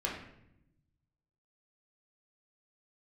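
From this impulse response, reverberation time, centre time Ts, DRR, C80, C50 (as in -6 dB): 0.80 s, 38 ms, -3.5 dB, 7.5 dB, 4.5 dB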